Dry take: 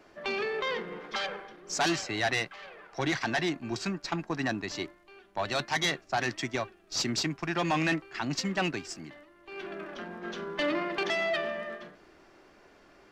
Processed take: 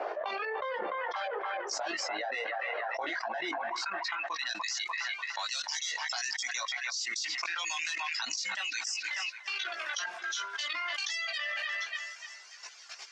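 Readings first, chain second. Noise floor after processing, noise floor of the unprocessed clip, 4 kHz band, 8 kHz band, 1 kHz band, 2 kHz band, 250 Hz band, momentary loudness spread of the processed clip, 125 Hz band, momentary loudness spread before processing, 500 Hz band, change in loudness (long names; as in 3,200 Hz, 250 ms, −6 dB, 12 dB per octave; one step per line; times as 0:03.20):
−49 dBFS, −59 dBFS, +1.0 dB, +2.5 dB, −1.5 dB, 0.0 dB, −18.5 dB, 3 LU, below −35 dB, 13 LU, −6.5 dB, −2.0 dB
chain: reverb reduction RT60 1.8 s
high-pass filter 400 Hz 6 dB per octave
noise reduction from a noise print of the clip's start 9 dB
dynamic equaliser 620 Hz, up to −5 dB, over −46 dBFS, Q 1.9
harmonic and percussive parts rebalanced percussive +4 dB
three-way crossover with the lows and the highs turned down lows −18 dB, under 540 Hz, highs −16 dB, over 7,300 Hz
output level in coarse steps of 12 dB
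multi-voice chorus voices 4, 0.16 Hz, delay 17 ms, depth 2.5 ms
band-pass filter sweep 580 Hz → 6,400 Hz, 0:03.43–0:04.70
delay with a band-pass on its return 295 ms, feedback 34%, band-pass 1,300 Hz, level −15.5 dB
envelope flattener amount 100%
level +8 dB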